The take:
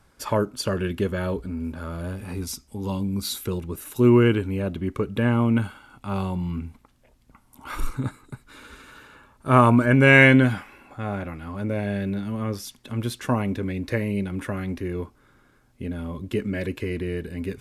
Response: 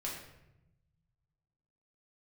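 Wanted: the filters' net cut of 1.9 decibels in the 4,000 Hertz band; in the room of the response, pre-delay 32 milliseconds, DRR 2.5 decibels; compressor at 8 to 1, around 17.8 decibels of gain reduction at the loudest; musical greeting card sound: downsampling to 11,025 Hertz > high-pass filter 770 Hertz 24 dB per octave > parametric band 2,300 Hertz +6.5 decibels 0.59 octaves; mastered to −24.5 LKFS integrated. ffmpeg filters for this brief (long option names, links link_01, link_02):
-filter_complex "[0:a]equalizer=frequency=4000:width_type=o:gain=-6,acompressor=threshold=-30dB:ratio=8,asplit=2[link_01][link_02];[1:a]atrim=start_sample=2205,adelay=32[link_03];[link_02][link_03]afir=irnorm=-1:irlink=0,volume=-3.5dB[link_04];[link_01][link_04]amix=inputs=2:normalize=0,aresample=11025,aresample=44100,highpass=frequency=770:width=0.5412,highpass=frequency=770:width=1.3066,equalizer=frequency=2300:width_type=o:width=0.59:gain=6.5,volume=15.5dB"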